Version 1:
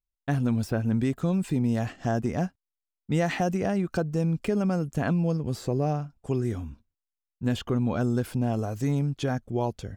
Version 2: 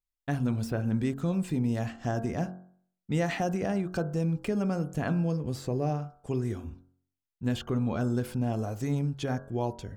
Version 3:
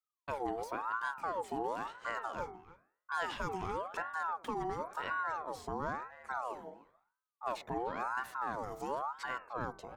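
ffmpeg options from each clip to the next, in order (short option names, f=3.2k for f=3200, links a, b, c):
-af "bandreject=f=45.68:t=h:w=4,bandreject=f=91.36:t=h:w=4,bandreject=f=137.04:t=h:w=4,bandreject=f=182.72:t=h:w=4,bandreject=f=228.4:t=h:w=4,bandreject=f=274.08:t=h:w=4,bandreject=f=319.76:t=h:w=4,bandreject=f=365.44:t=h:w=4,bandreject=f=411.12:t=h:w=4,bandreject=f=456.8:t=h:w=4,bandreject=f=502.48:t=h:w=4,bandreject=f=548.16:t=h:w=4,bandreject=f=593.84:t=h:w=4,bandreject=f=639.52:t=h:w=4,bandreject=f=685.2:t=h:w=4,bandreject=f=730.88:t=h:w=4,bandreject=f=776.56:t=h:w=4,bandreject=f=822.24:t=h:w=4,bandreject=f=867.92:t=h:w=4,bandreject=f=913.6:t=h:w=4,bandreject=f=959.28:t=h:w=4,bandreject=f=1.00496k:t=h:w=4,bandreject=f=1.05064k:t=h:w=4,bandreject=f=1.09632k:t=h:w=4,bandreject=f=1.142k:t=h:w=4,bandreject=f=1.18768k:t=h:w=4,bandreject=f=1.23336k:t=h:w=4,bandreject=f=1.27904k:t=h:w=4,bandreject=f=1.32472k:t=h:w=4,bandreject=f=1.3704k:t=h:w=4,bandreject=f=1.41608k:t=h:w=4,bandreject=f=1.46176k:t=h:w=4,bandreject=f=1.50744k:t=h:w=4,bandreject=f=1.55312k:t=h:w=4,bandreject=f=1.5988k:t=h:w=4,bandreject=f=1.64448k:t=h:w=4,volume=-2.5dB"
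-filter_complex "[0:a]asplit=2[a][b];[b]adelay=300,highpass=300,lowpass=3.4k,asoftclip=type=hard:threshold=-24dB,volume=-14dB[c];[a][c]amix=inputs=2:normalize=0,aeval=exprs='val(0)*sin(2*PI*920*n/s+920*0.4/0.97*sin(2*PI*0.97*n/s))':c=same,volume=-6dB"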